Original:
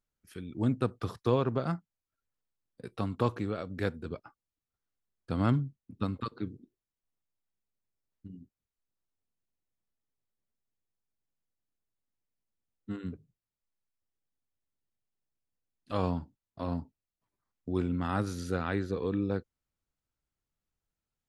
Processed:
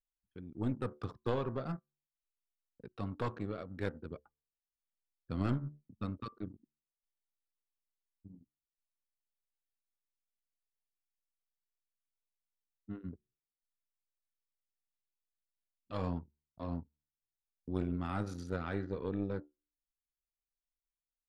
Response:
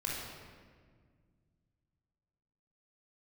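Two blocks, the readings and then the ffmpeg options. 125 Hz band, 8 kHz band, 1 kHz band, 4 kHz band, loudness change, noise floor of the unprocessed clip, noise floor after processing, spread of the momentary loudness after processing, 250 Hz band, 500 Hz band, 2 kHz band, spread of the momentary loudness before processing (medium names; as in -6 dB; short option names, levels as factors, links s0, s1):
-6.0 dB, no reading, -7.0 dB, -7.5 dB, -6.5 dB, under -85 dBFS, under -85 dBFS, 16 LU, -6.0 dB, -6.5 dB, -6.5 dB, 18 LU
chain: -af "bandreject=f=73.48:t=h:w=4,bandreject=f=146.96:t=h:w=4,bandreject=f=220.44:t=h:w=4,bandreject=f=293.92:t=h:w=4,bandreject=f=367.4:t=h:w=4,bandreject=f=440.88:t=h:w=4,bandreject=f=514.36:t=h:w=4,bandreject=f=587.84:t=h:w=4,bandreject=f=661.32:t=h:w=4,bandreject=f=734.8:t=h:w=4,bandreject=f=808.28:t=h:w=4,bandreject=f=881.76:t=h:w=4,bandreject=f=955.24:t=h:w=4,bandreject=f=1028.72:t=h:w=4,bandreject=f=1102.2:t=h:w=4,bandreject=f=1175.68:t=h:w=4,bandreject=f=1249.16:t=h:w=4,bandreject=f=1322.64:t=h:w=4,bandreject=f=1396.12:t=h:w=4,bandreject=f=1469.6:t=h:w=4,bandreject=f=1543.08:t=h:w=4,bandreject=f=1616.56:t=h:w=4,bandreject=f=1690.04:t=h:w=4,bandreject=f=1763.52:t=h:w=4,bandreject=f=1837:t=h:w=4,bandreject=f=1910.48:t=h:w=4,bandreject=f=1983.96:t=h:w=4,aeval=exprs='0.237*(cos(1*acos(clip(val(0)/0.237,-1,1)))-cos(1*PI/2))+0.119*(cos(2*acos(clip(val(0)/0.237,-1,1)))-cos(2*PI/2))+0.00422*(cos(7*acos(clip(val(0)/0.237,-1,1)))-cos(7*PI/2))':c=same,anlmdn=0.0631,volume=0.562"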